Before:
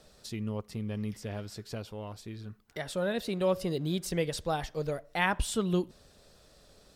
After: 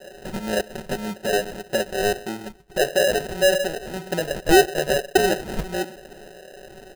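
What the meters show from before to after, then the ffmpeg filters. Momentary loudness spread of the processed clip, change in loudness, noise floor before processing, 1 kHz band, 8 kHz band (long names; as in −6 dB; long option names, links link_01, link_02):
15 LU, +10.5 dB, −60 dBFS, +11.0 dB, +12.0 dB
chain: -filter_complex "[0:a]adynamicequalizer=threshold=0.00355:dfrequency=2900:dqfactor=0.81:tfrequency=2900:tqfactor=0.81:attack=5:release=100:ratio=0.375:range=3:mode=cutabove:tftype=bell,aecho=1:1:5.3:0.81,acompressor=threshold=-26dB:ratio=2.5,apsyclip=31dB,asplit=3[link_01][link_02][link_03];[link_01]bandpass=frequency=730:width_type=q:width=8,volume=0dB[link_04];[link_02]bandpass=frequency=1090:width_type=q:width=8,volume=-6dB[link_05];[link_03]bandpass=frequency=2440:width_type=q:width=8,volume=-9dB[link_06];[link_04][link_05][link_06]amix=inputs=3:normalize=0,asplit=2[link_07][link_08];[link_08]adelay=124,lowpass=frequency=1200:poles=1,volume=-19.5dB,asplit=2[link_09][link_10];[link_10]adelay=124,lowpass=frequency=1200:poles=1,volume=0.29[link_11];[link_07][link_09][link_11]amix=inputs=3:normalize=0,acrossover=split=690[link_12][link_13];[link_12]aeval=exprs='val(0)*(1-1/2+1/2*cos(2*PI*1.7*n/s))':channel_layout=same[link_14];[link_13]aeval=exprs='val(0)*(1-1/2-1/2*cos(2*PI*1.7*n/s))':channel_layout=same[link_15];[link_14][link_15]amix=inputs=2:normalize=0,acrusher=samples=39:mix=1:aa=0.000001,volume=2.5dB"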